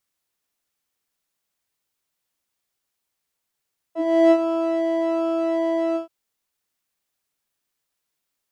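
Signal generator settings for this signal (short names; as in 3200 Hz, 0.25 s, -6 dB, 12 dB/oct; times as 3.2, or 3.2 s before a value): synth patch with pulse-width modulation E5, oscillator 2 square, interval +7 st, detune 5 cents, oscillator 2 level -12 dB, sub -10.5 dB, filter bandpass, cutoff 120 Hz, Q 3.4, filter decay 0.09 s, filter sustain 40%, attack 0.362 s, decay 0.06 s, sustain -9.5 dB, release 0.12 s, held 2.01 s, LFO 1.3 Hz, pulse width 42%, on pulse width 10%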